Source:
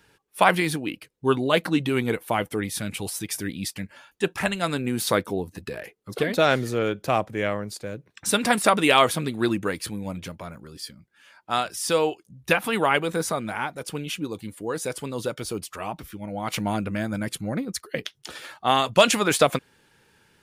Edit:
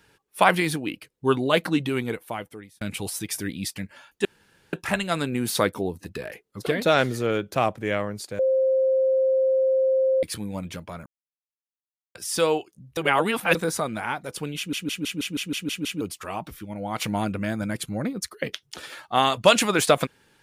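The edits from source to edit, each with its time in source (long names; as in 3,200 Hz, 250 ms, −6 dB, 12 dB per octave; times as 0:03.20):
0:01.68–0:02.81: fade out
0:04.25: splice in room tone 0.48 s
0:07.91–0:09.75: beep over 527 Hz −17.5 dBFS
0:10.58–0:11.67: silence
0:12.49–0:13.07: reverse
0:14.09: stutter in place 0.16 s, 9 plays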